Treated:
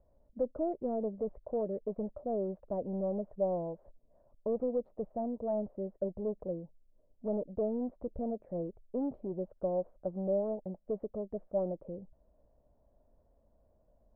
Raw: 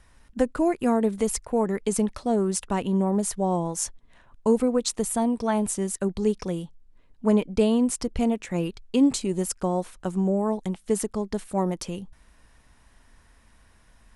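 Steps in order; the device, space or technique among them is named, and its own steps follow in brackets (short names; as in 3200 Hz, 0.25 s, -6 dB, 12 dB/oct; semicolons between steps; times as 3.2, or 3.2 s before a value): overdriven synthesiser ladder filter (soft clip -20.5 dBFS, distortion -11 dB; ladder low-pass 640 Hz, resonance 75%)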